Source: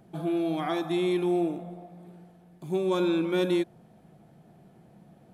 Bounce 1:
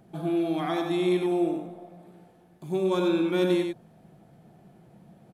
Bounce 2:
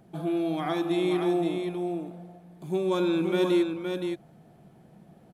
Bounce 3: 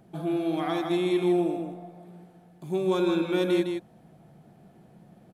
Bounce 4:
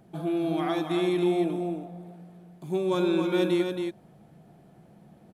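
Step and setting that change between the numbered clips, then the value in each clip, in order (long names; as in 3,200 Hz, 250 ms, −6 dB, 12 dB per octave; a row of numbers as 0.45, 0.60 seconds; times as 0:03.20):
single-tap delay, delay time: 94, 520, 158, 274 milliseconds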